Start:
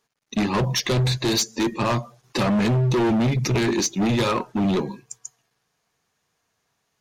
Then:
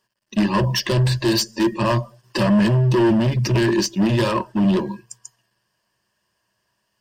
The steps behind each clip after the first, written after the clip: ripple EQ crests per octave 1.3, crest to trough 11 dB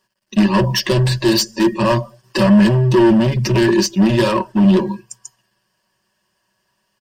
comb 5.3 ms, depth 43%; gain +3 dB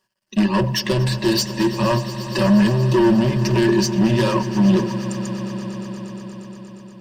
swelling echo 0.118 s, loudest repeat 5, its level -17.5 dB; gain -4 dB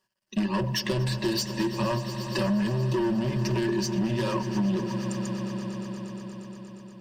compressor, threshold -18 dBFS, peak gain reduction 7 dB; gain -5 dB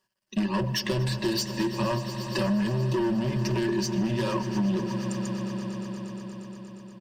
echo 0.154 s -22 dB

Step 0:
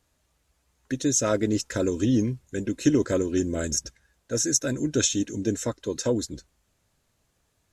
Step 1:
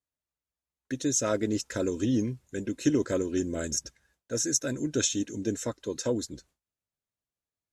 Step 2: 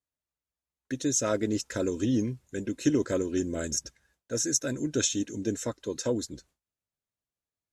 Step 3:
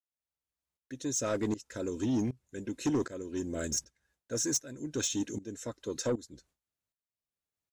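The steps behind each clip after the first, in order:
gate with hold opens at -52 dBFS; low shelf 71 Hz -7.5 dB; gain -3.5 dB
nothing audible
tremolo saw up 1.3 Hz, depth 90%; soft clip -24.5 dBFS, distortion -13 dB; gain +1 dB

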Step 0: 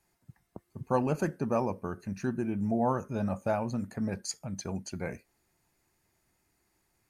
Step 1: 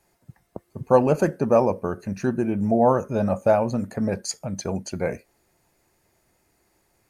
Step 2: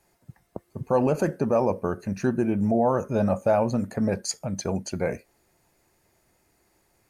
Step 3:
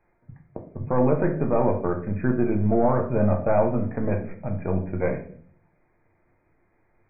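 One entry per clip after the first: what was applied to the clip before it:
bell 540 Hz +7 dB 0.92 oct; gain +6.5 dB
limiter -12.5 dBFS, peak gain reduction 7 dB
half-wave gain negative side -3 dB; brick-wall FIR low-pass 2500 Hz; shoebox room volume 62 m³, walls mixed, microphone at 0.51 m

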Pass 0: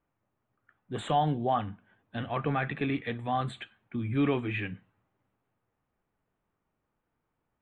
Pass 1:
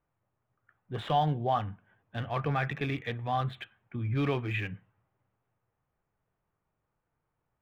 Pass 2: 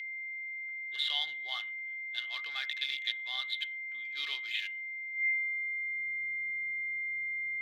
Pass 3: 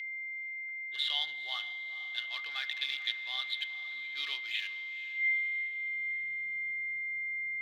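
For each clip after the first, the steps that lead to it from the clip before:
Wiener smoothing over 9 samples; ten-band EQ 125 Hz +4 dB, 250 Hz -7 dB, 4000 Hz +5 dB, 8000 Hz -8 dB
thirty-one-band EQ 200 Hz +9 dB, 2500 Hz -8 dB, 4000 Hz +7 dB; whine 2100 Hz -36 dBFS; high-pass sweep 3300 Hz -> 140 Hz, 5.13–6.03; gain +3 dB
diffused feedback echo 0.466 s, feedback 49%, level -14 dB; reverb RT60 1.9 s, pre-delay 3 ms, DRR 16 dB

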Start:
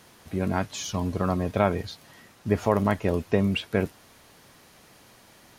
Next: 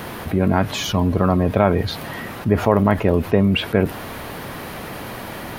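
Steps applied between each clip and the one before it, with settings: bell 6600 Hz -14.5 dB 1.6 oct; fast leveller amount 50%; gain +5.5 dB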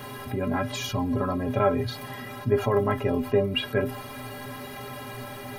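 metallic resonator 120 Hz, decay 0.25 s, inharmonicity 0.03; gain +3 dB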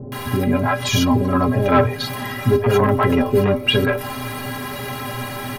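sine folder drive 4 dB, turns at -9 dBFS; bands offset in time lows, highs 0.12 s, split 500 Hz; gain +3 dB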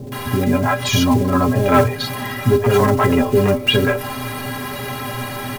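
block floating point 5-bit; gain +1.5 dB

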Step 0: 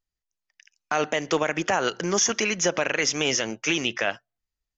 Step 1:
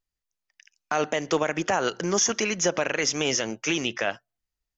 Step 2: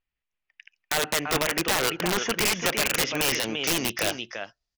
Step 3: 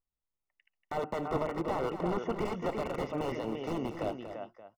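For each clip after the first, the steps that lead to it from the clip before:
dynamic EQ 2400 Hz, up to -3 dB, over -38 dBFS, Q 0.81
low-pass sweep 2600 Hz -> 5200 Hz, 2.94–4.01; echo 0.34 s -9 dB; wrapped overs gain 16 dB
polynomial smoothing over 65 samples; echo 0.236 s -10 dB; gain -4 dB

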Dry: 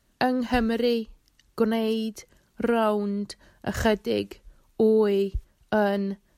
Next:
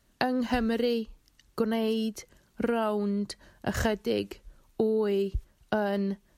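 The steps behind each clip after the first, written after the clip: compressor, threshold -23 dBFS, peak gain reduction 7.5 dB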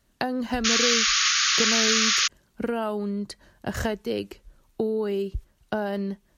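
painted sound noise, 0.64–2.28, 1100–6900 Hz -22 dBFS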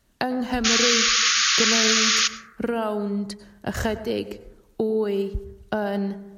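plate-style reverb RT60 0.92 s, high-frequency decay 0.25×, pre-delay 85 ms, DRR 13.5 dB; gain +2 dB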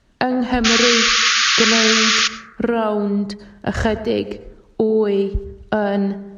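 air absorption 93 m; gain +7 dB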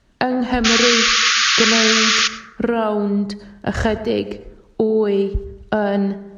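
plate-style reverb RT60 0.78 s, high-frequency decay 0.75×, DRR 19.5 dB

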